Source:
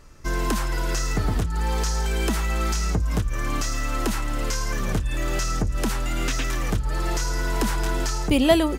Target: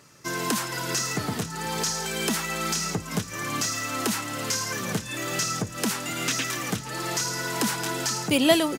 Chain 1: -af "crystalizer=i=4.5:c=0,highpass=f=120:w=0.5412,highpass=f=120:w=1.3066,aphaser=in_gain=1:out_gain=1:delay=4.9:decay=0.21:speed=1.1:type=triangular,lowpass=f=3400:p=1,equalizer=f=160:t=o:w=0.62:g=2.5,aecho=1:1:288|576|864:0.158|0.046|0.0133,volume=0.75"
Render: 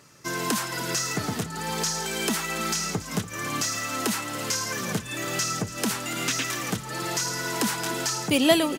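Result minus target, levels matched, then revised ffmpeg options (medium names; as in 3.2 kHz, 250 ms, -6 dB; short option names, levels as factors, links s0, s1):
echo 186 ms early
-af "crystalizer=i=4.5:c=0,highpass=f=120:w=0.5412,highpass=f=120:w=1.3066,aphaser=in_gain=1:out_gain=1:delay=4.9:decay=0.21:speed=1.1:type=triangular,lowpass=f=3400:p=1,equalizer=f=160:t=o:w=0.62:g=2.5,aecho=1:1:474|948|1422:0.158|0.046|0.0133,volume=0.75"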